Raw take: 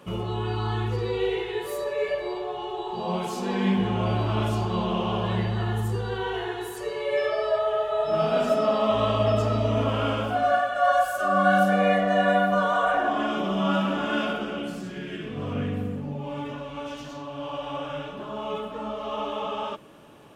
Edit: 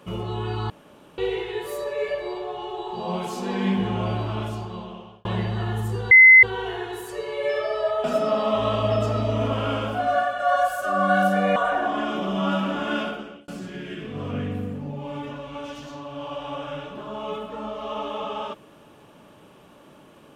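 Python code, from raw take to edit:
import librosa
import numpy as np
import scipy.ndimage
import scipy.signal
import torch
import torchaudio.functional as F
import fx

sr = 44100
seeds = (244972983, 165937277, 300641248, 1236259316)

y = fx.edit(x, sr, fx.room_tone_fill(start_s=0.7, length_s=0.48),
    fx.fade_out_span(start_s=3.96, length_s=1.29),
    fx.insert_tone(at_s=6.11, length_s=0.32, hz=2050.0, db=-6.5),
    fx.cut(start_s=7.72, length_s=0.68),
    fx.cut(start_s=11.92, length_s=0.86),
    fx.fade_out_span(start_s=14.22, length_s=0.48), tone=tone)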